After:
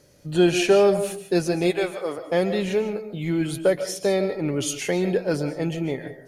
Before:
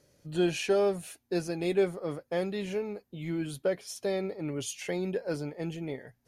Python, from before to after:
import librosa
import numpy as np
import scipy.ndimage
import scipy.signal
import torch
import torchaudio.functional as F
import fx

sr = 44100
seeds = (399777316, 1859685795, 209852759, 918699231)

y = fx.highpass(x, sr, hz=fx.line((1.7, 830.0), (2.17, 360.0)), slope=12, at=(1.7, 2.17), fade=0.02)
y = fx.rev_freeverb(y, sr, rt60_s=0.42, hf_ratio=0.4, predelay_ms=105, drr_db=9.5)
y = y * 10.0 ** (9.0 / 20.0)